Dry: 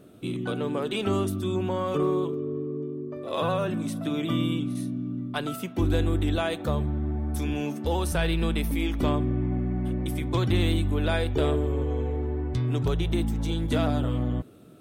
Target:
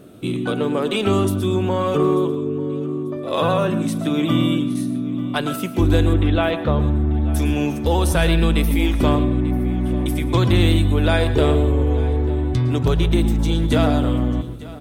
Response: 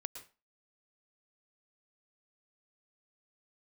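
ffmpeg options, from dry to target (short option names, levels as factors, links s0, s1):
-filter_complex "[0:a]asettb=1/sr,asplit=3[s0][s1][s2];[s0]atrim=end=6.134[s3];[s1]atrim=start=6.13:end=7.07,asetpts=PTS-STARTPTS,afade=t=in:d=0.004:c=qsin,afade=t=out:st=0.936:d=0.004:c=qsin,lowpass=f=3500:w=0.5412,lowpass=f=3500:w=1.3066[s4];[s2]atrim=start=7.066[s5];[s3][s4]acrossfade=d=0.004:c1=hsin:c2=qsin[s6];[s6][s5]acrossfade=d=0.004:c1=qsin:c2=hsin,aecho=1:1:891|1782|2673:0.112|0.0337|0.0101,asplit=2[s7][s8];[1:a]atrim=start_sample=2205[s9];[s8][s9]afir=irnorm=-1:irlink=0,volume=2[s10];[s7][s10]amix=inputs=2:normalize=0"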